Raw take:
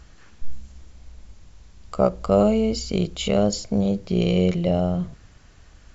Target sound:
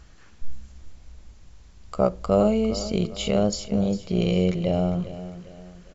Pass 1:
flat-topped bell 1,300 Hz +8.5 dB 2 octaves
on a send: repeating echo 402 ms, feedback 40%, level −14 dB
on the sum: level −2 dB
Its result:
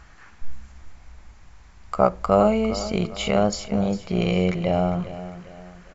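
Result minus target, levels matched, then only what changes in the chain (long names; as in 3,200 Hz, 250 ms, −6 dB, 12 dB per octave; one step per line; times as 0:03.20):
1,000 Hz band +6.5 dB
remove: flat-topped bell 1,300 Hz +8.5 dB 2 octaves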